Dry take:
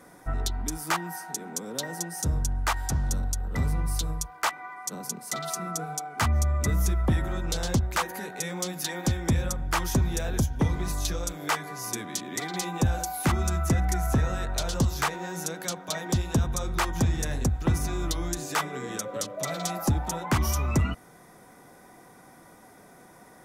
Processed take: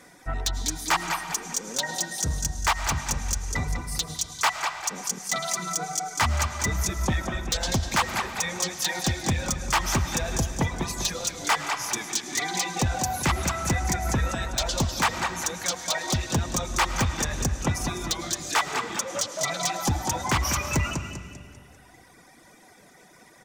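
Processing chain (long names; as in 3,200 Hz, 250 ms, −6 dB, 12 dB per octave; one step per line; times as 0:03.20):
flat-topped bell 3,800 Hz +8.5 dB 2.4 octaves
repeating echo 198 ms, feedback 50%, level −6 dB
reverb reduction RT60 1.7 s
on a send at −10 dB: convolution reverb RT60 2.4 s, pre-delay 65 ms
on the sum: wave folding −15 dBFS
dynamic equaliser 900 Hz, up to +8 dB, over −45 dBFS, Q 1.2
in parallel at −8 dB: hard clipping −21 dBFS, distortion −11 dB
on the sum: level −4 dB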